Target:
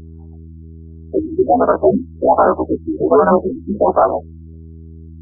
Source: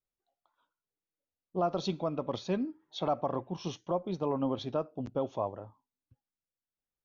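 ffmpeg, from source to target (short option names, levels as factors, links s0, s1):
-filter_complex "[0:a]afftfilt=real='re':imag='-im':win_size=2048:overlap=0.75,adynamicequalizer=threshold=0.00794:dfrequency=530:dqfactor=1.3:tfrequency=530:tqfactor=1.3:attack=5:release=100:ratio=0.375:range=1.5:mode=cutabove:tftype=bell,acrossover=split=400|2300[s0][s1][s2];[s1]acontrast=72[s3];[s0][s3][s2]amix=inputs=3:normalize=0,highpass=f=320:t=q:w=0.5412,highpass=f=320:t=q:w=1.307,lowpass=f=3300:t=q:w=0.5176,lowpass=f=3300:t=q:w=0.7071,lowpass=f=3300:t=q:w=1.932,afreqshift=-110,aeval=exprs='val(0)+0.000891*(sin(2*PI*60*n/s)+sin(2*PI*2*60*n/s)/2+sin(2*PI*3*60*n/s)/3+sin(2*PI*4*60*n/s)/4+sin(2*PI*5*60*n/s)/5)':c=same,asoftclip=type=hard:threshold=0.1,adynamicsmooth=sensitivity=2.5:basefreq=610,asetrate=59535,aresample=44100,alimiter=level_in=26.6:limit=0.891:release=50:level=0:latency=1,afftfilt=real='re*lt(b*sr/1024,340*pow(1700/340,0.5+0.5*sin(2*PI*1.3*pts/sr)))':imag='im*lt(b*sr/1024,340*pow(1700/340,0.5+0.5*sin(2*PI*1.3*pts/sr)))':win_size=1024:overlap=0.75,volume=0.841"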